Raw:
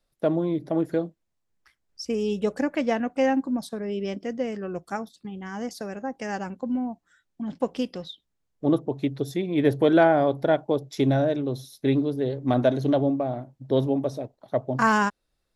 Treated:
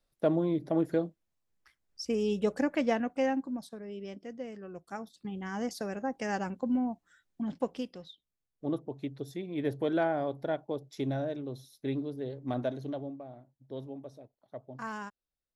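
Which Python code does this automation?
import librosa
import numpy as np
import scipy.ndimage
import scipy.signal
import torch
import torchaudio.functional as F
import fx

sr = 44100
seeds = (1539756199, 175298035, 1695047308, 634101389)

y = fx.gain(x, sr, db=fx.line((2.88, -3.5), (3.82, -12.0), (4.83, -12.0), (5.28, -2.0), (7.42, -2.0), (7.93, -11.0), (12.59, -11.0), (13.21, -18.5)))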